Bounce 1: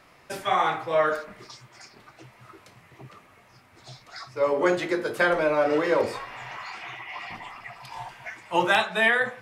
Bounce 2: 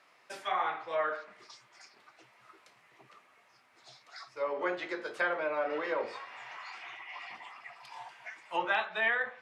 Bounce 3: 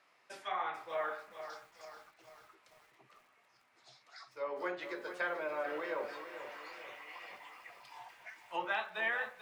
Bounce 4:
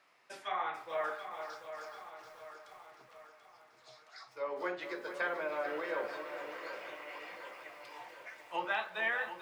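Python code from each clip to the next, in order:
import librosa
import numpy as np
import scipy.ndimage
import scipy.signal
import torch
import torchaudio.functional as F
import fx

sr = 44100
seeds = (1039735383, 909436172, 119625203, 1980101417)

y1 = fx.weighting(x, sr, curve='A')
y1 = fx.env_lowpass_down(y1, sr, base_hz=2700.0, full_db=-20.5)
y1 = y1 * 10.0 ** (-8.0 / 20.0)
y2 = fx.echo_crushed(y1, sr, ms=441, feedback_pct=55, bits=9, wet_db=-10)
y2 = y2 * 10.0 ** (-5.5 / 20.0)
y3 = fx.echo_feedback(y2, sr, ms=735, feedback_pct=51, wet_db=-10.0)
y3 = y3 * 10.0 ** (1.0 / 20.0)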